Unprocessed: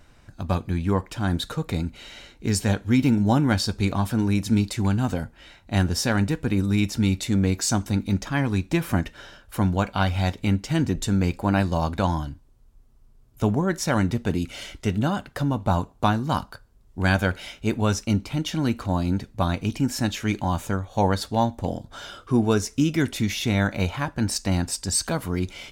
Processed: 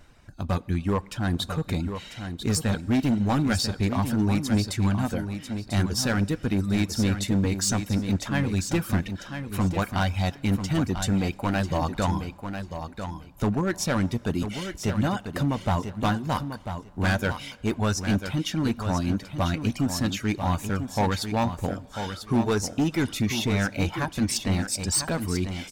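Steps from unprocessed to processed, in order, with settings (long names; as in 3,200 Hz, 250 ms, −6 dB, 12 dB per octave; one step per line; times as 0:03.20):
reverb reduction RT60 0.67 s
hard clipping −18.5 dBFS, distortion −12 dB
repeating echo 994 ms, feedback 17%, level −8.5 dB
on a send at −22 dB: convolution reverb RT60 2.6 s, pre-delay 6 ms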